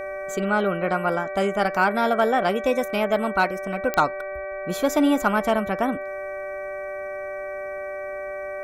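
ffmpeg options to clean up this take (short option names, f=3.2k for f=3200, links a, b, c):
-af "adeclick=t=4,bandreject=f=383.5:t=h:w=4,bandreject=f=767:t=h:w=4,bandreject=f=1.1505k:t=h:w=4,bandreject=f=1.534k:t=h:w=4,bandreject=f=1.9175k:t=h:w=4,bandreject=f=2.301k:t=h:w=4,bandreject=f=590:w=30"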